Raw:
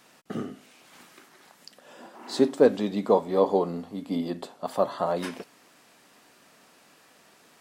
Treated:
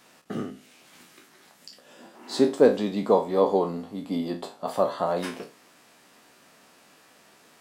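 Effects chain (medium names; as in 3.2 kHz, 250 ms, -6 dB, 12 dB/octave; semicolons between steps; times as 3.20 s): spectral sustain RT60 0.30 s; 0.50–2.31 s: dynamic bell 900 Hz, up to -6 dB, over -58 dBFS, Q 0.72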